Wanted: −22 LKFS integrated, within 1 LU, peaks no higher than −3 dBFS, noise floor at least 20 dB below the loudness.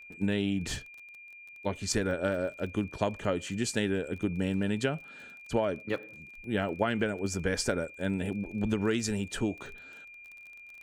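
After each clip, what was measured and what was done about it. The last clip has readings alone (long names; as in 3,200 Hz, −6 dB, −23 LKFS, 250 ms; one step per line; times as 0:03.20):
crackle rate 29 per second; interfering tone 2,400 Hz; level of the tone −47 dBFS; integrated loudness −32.0 LKFS; sample peak −12.0 dBFS; target loudness −22.0 LKFS
→ click removal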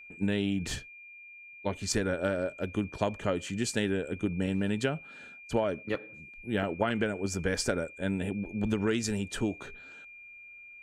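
crackle rate 0 per second; interfering tone 2,400 Hz; level of the tone −47 dBFS
→ notch filter 2,400 Hz, Q 30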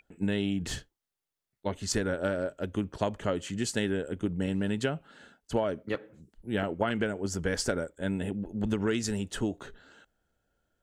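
interfering tone none found; integrated loudness −32.0 LKFS; sample peak −12.0 dBFS; target loudness −22.0 LKFS
→ level +10 dB
brickwall limiter −3 dBFS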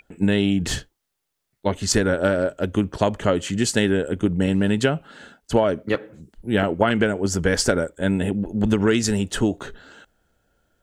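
integrated loudness −22.0 LKFS; sample peak −3.0 dBFS; background noise floor −79 dBFS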